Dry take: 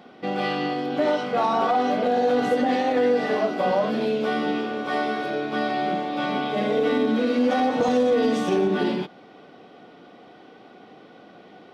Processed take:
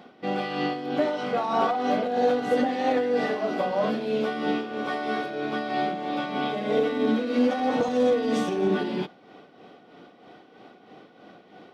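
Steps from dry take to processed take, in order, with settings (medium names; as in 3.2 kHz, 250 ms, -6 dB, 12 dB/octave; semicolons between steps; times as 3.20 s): tremolo 3.1 Hz, depth 56%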